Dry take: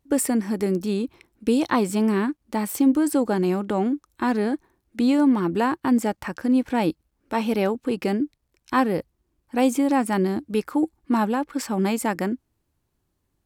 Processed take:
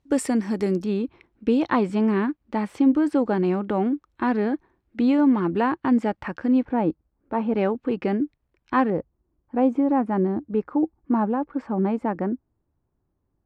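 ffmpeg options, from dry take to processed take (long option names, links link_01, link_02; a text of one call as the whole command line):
ffmpeg -i in.wav -af "asetnsamples=nb_out_samples=441:pad=0,asendcmd='0.84 lowpass f 2800;6.65 lowpass f 1200;7.56 lowpass f 2300;8.9 lowpass f 1100',lowpass=6200" out.wav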